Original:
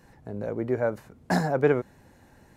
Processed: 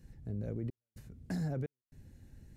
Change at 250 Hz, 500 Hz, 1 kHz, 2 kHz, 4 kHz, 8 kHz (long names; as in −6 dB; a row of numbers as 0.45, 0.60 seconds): −10.5, −21.0, −24.0, −21.5, −16.0, −14.0 decibels